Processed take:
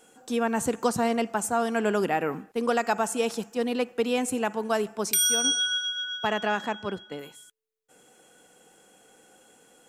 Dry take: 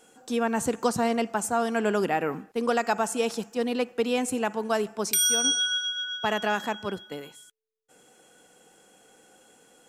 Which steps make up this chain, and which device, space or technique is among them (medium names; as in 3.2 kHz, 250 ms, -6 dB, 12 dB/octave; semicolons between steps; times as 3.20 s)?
exciter from parts (in parallel at -14 dB: high-pass 4.5 kHz 24 dB/octave + saturation -19 dBFS, distortion -18 dB); 6.27–7.19 s: on the sum: distance through air 53 m